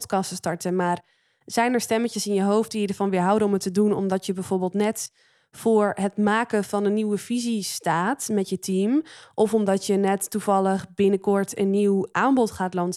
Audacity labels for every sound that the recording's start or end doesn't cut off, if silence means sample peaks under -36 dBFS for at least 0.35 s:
1.480000	5.060000	sound